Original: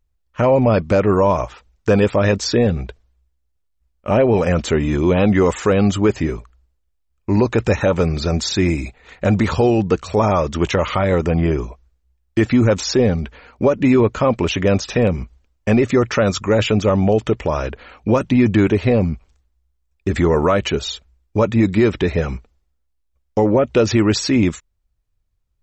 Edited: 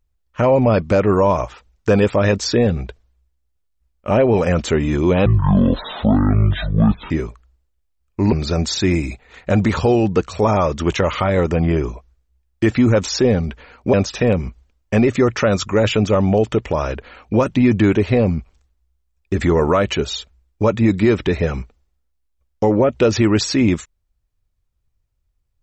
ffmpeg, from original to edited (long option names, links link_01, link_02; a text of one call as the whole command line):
ffmpeg -i in.wav -filter_complex "[0:a]asplit=5[link_01][link_02][link_03][link_04][link_05];[link_01]atrim=end=5.264[link_06];[link_02]atrim=start=5.26:end=6.2,asetpts=PTS-STARTPTS,asetrate=22491,aresample=44100,atrim=end_sample=81282,asetpts=PTS-STARTPTS[link_07];[link_03]atrim=start=6.196:end=7.422[link_08];[link_04]atrim=start=8.068:end=13.682[link_09];[link_05]atrim=start=14.678[link_10];[link_06][link_07]acrossfade=duration=0.004:curve1=hsin:curve2=hsin[link_11];[link_11][link_08]acrossfade=duration=0.004:curve1=hsin:curve2=hsin[link_12];[link_12][link_09]acrossfade=duration=0.004:curve1=hsin:curve2=hsin[link_13];[link_13][link_10]acrossfade=duration=0.004:curve1=hsin:curve2=hsin" out.wav